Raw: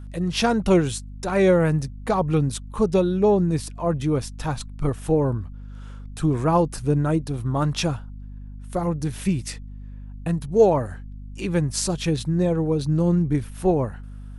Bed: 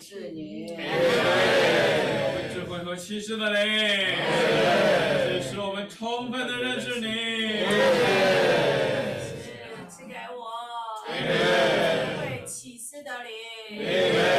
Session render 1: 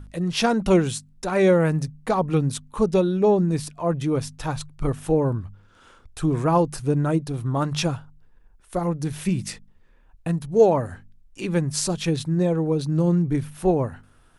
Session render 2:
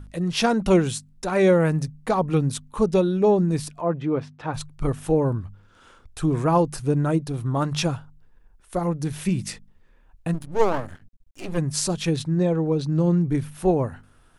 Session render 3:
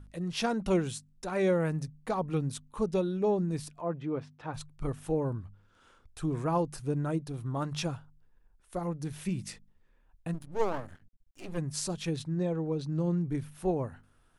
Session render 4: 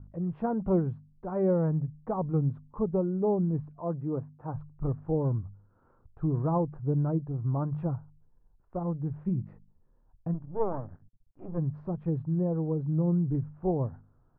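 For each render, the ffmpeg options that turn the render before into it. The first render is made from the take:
ffmpeg -i in.wav -af "bandreject=frequency=50:width_type=h:width=4,bandreject=frequency=100:width_type=h:width=4,bandreject=frequency=150:width_type=h:width=4,bandreject=frequency=200:width_type=h:width=4,bandreject=frequency=250:width_type=h:width=4" out.wav
ffmpeg -i in.wav -filter_complex "[0:a]asplit=3[link_01][link_02][link_03];[link_01]afade=type=out:start_time=3.8:duration=0.02[link_04];[link_02]highpass=160,lowpass=2300,afade=type=in:start_time=3.8:duration=0.02,afade=type=out:start_time=4.53:duration=0.02[link_05];[link_03]afade=type=in:start_time=4.53:duration=0.02[link_06];[link_04][link_05][link_06]amix=inputs=3:normalize=0,asplit=3[link_07][link_08][link_09];[link_07]afade=type=out:start_time=10.33:duration=0.02[link_10];[link_08]aeval=exprs='max(val(0),0)':channel_layout=same,afade=type=in:start_time=10.33:duration=0.02,afade=type=out:start_time=11.57:duration=0.02[link_11];[link_09]afade=type=in:start_time=11.57:duration=0.02[link_12];[link_10][link_11][link_12]amix=inputs=3:normalize=0,asettb=1/sr,asplit=3[link_13][link_14][link_15];[link_13]atrim=end=12.224[link_16];[link_14]atrim=start=12.22:end=13.21,asetpts=PTS-STARTPTS,afade=type=in:duration=0.004:curve=qsin,afade=type=out:start_time=0.986:duration=0.004:curve=qsin,lowpass=6800[link_17];[link_15]atrim=start=13.206[link_18];[link_16][link_17]acrossfade=duration=0.004:curve1=hsin:curve2=qsin[link_19];[link_19][link_18]acrossfade=duration=0.004:curve1=qsin:curve2=hsin" out.wav
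ffmpeg -i in.wav -af "volume=-9.5dB" out.wav
ffmpeg -i in.wav -af "lowpass=frequency=1100:width=0.5412,lowpass=frequency=1100:width=1.3066,equalizer=frequency=120:width_type=o:width=1.1:gain=7" out.wav

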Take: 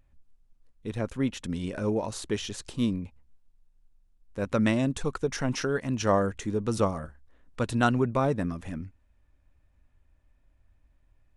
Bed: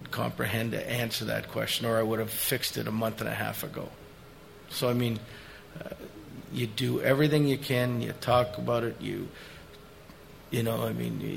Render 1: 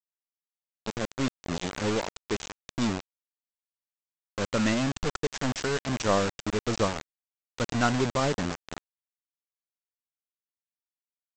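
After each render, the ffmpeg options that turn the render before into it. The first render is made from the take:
ffmpeg -i in.wav -af "aeval=exprs='if(lt(val(0),0),0.708*val(0),val(0))':channel_layout=same,aresample=16000,acrusher=bits=4:mix=0:aa=0.000001,aresample=44100" out.wav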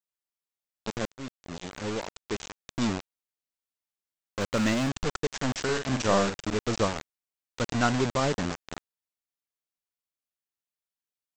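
ffmpeg -i in.wav -filter_complex "[0:a]asplit=3[link_01][link_02][link_03];[link_01]afade=type=out:start_time=4.39:duration=0.02[link_04];[link_02]aeval=exprs='val(0)*gte(abs(val(0)),0.00944)':channel_layout=same,afade=type=in:start_time=4.39:duration=0.02,afade=type=out:start_time=4.88:duration=0.02[link_05];[link_03]afade=type=in:start_time=4.88:duration=0.02[link_06];[link_04][link_05][link_06]amix=inputs=3:normalize=0,asettb=1/sr,asplit=3[link_07][link_08][link_09];[link_07]atrim=end=5.624[link_10];[link_08]atrim=start=5.62:end=6.54,asetpts=PTS-STARTPTS,afade=type=in:duration=0.004:curve=qsin,afade=type=out:start_time=0.916:duration=0.004:curve=qsin,asplit=2[link_11][link_12];[link_12]adelay=46,volume=-6dB[link_13];[link_11][link_13]amix=inputs=2:normalize=0,atrim=end_sample=40572[link_14];[link_09]atrim=start=6.536[link_15];[link_10][link_14]acrossfade=duration=0.004:curve1=hsin:curve2=qsin[link_16];[link_16][link_15]acrossfade=duration=0.004:curve1=qsin:curve2=hsin,asplit=2[link_17][link_18];[link_17]atrim=end=1.07,asetpts=PTS-STARTPTS,afade=type=out:start_time=1.066:duration=0.004:curve=hsin:silence=0.211349[link_19];[link_18]atrim=start=1.07,asetpts=PTS-STARTPTS,afade=type=in:duration=1.79:silence=0.211349[link_20];[link_19][link_20]concat=n=2:v=0:a=1" out.wav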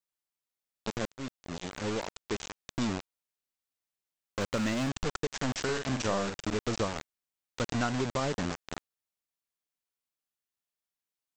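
ffmpeg -i in.wav -af "acompressor=threshold=-28dB:ratio=3" out.wav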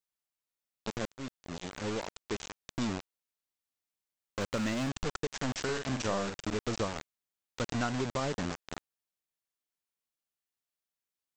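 ffmpeg -i in.wav -af "volume=-2dB" out.wav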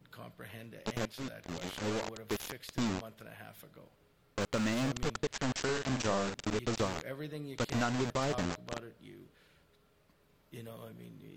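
ffmpeg -i in.wav -i bed.wav -filter_complex "[1:a]volume=-18.5dB[link_01];[0:a][link_01]amix=inputs=2:normalize=0" out.wav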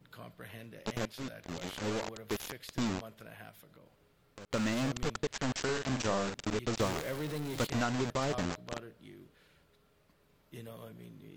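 ffmpeg -i in.wav -filter_complex "[0:a]asettb=1/sr,asplit=3[link_01][link_02][link_03];[link_01]atrim=end=3.494[link_04];[link_02]atrim=start=3.49:end=4.51,asetpts=PTS-STARTPTS,afade=type=in:duration=0.004:curve=qsin,afade=type=out:start_time=1.016:duration=0.004:curve=qsin,acompressor=threshold=-54dB:ratio=2.5:attack=3.2:release=140:knee=1:detection=peak[link_05];[link_03]atrim=start=4.506[link_06];[link_04][link_05]acrossfade=duration=0.004:curve1=hsin:curve2=qsin[link_07];[link_07][link_06]acrossfade=duration=0.004:curve1=qsin:curve2=hsin,asettb=1/sr,asplit=3[link_08][link_09][link_10];[link_08]atrim=end=6.804[link_11];[link_09]atrim=start=6.8:end=7.67,asetpts=PTS-STARTPTS,afade=type=in:duration=0.004:curve=qsin,afade=type=out:start_time=0.866:duration=0.004:curve=qsin,aeval=exprs='val(0)+0.5*0.0141*sgn(val(0))':channel_layout=same[link_12];[link_10]atrim=start=7.666[link_13];[link_11][link_12]acrossfade=duration=0.004:curve1=hsin:curve2=qsin[link_14];[link_14][link_13]acrossfade=duration=0.004:curve1=qsin:curve2=hsin" out.wav

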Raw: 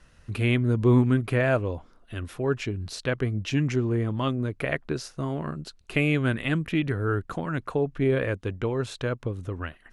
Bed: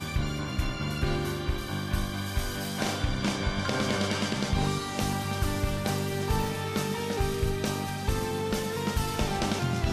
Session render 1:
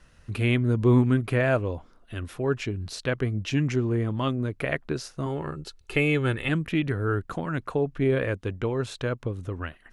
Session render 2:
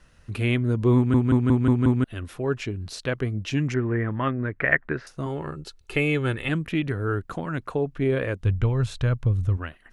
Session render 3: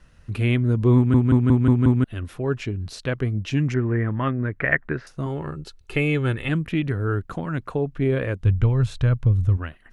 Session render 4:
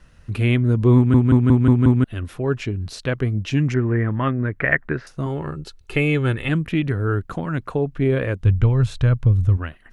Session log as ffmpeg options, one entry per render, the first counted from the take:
ffmpeg -i in.wav -filter_complex "[0:a]asettb=1/sr,asplit=3[link_01][link_02][link_03];[link_01]atrim=end=5.264[link_04];[link_02]atrim=start=5.26:end=6.49,asetpts=PTS-STARTPTS,afade=type=in:duration=0.004:curve=qsin,afade=type=out:start_time=1.226:duration=0.004:curve=qsin,aecho=1:1:2.3:0.54,atrim=end_sample=54243[link_05];[link_03]atrim=start=6.486[link_06];[link_04][link_05]acrossfade=duration=0.004:curve1=hsin:curve2=qsin[link_07];[link_07][link_06]acrossfade=duration=0.004:curve1=qsin:curve2=hsin" out.wav
ffmpeg -i in.wav -filter_complex "[0:a]asettb=1/sr,asplit=3[link_01][link_02][link_03];[link_01]atrim=end=3.744[link_04];[link_02]atrim=start=3.74:end=5.07,asetpts=PTS-STARTPTS,afade=type=in:duration=0.004:curve=qsin,afade=type=out:start_time=1.326:duration=0.004:curve=qsin,lowpass=frequency=1800:width_type=q:width=4.4[link_05];[link_03]atrim=start=5.066[link_06];[link_04][link_05]acrossfade=duration=0.004:curve1=hsin:curve2=qsin[link_07];[link_07][link_06]acrossfade=duration=0.004:curve1=qsin:curve2=hsin,asplit=3[link_08][link_09][link_10];[link_08]afade=type=out:start_time=8.39:duration=0.02[link_11];[link_09]asubboost=boost=7:cutoff=120,afade=type=in:start_time=8.39:duration=0.02,afade=type=out:start_time=9.56:duration=0.02[link_12];[link_10]afade=type=in:start_time=9.56:duration=0.02[link_13];[link_11][link_12][link_13]amix=inputs=3:normalize=0,asplit=7[link_14][link_15][link_16][link_17][link_18][link_19][link_20];[link_14]atrim=end=1.142[link_21];[link_15]atrim=start=0.958:end=1.142[link_22];[link_16]atrim=start=0.958:end=1.142[link_23];[link_17]atrim=start=0.958:end=1.142[link_24];[link_18]atrim=start=0.958:end=1.142[link_25];[link_19]atrim=start=0.958:end=1.142[link_26];[link_20]atrim=start=2.038[link_27];[link_21][link_22]acrossfade=duration=0.004:curve1=hsin:curve2=hsin[link_28];[link_28][link_23]acrossfade=duration=0.004:curve1=hsin:curve2=hsin[link_29];[link_29][link_24]acrossfade=duration=0.004:curve1=hsin:curve2=hsin[link_30];[link_30][link_25]acrossfade=duration=0.004:curve1=hsin:curve2=hsin[link_31];[link_31][link_26]acrossfade=duration=0.004:curve1=hsin:curve2=hsin[link_32];[link_32][link_27]acrossfade=duration=0.004:curve1=hsin:curve2=hsin" out.wav
ffmpeg -i in.wav -af "bass=frequency=250:gain=4,treble=frequency=4000:gain=-2" out.wav
ffmpeg -i in.wav -af "volume=2.5dB,alimiter=limit=-3dB:level=0:latency=1" out.wav

